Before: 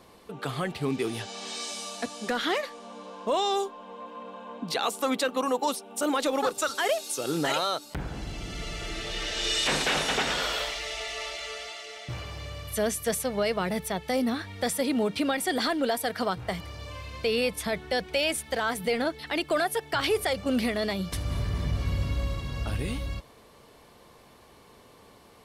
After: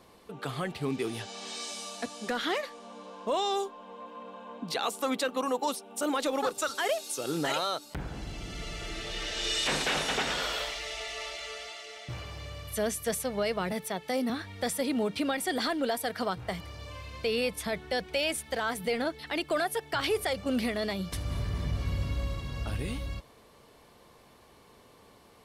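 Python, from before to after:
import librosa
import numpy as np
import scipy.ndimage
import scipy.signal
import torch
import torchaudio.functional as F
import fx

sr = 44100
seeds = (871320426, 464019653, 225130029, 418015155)

y = fx.highpass(x, sr, hz=170.0, slope=12, at=(13.72, 14.3))
y = y * librosa.db_to_amplitude(-3.0)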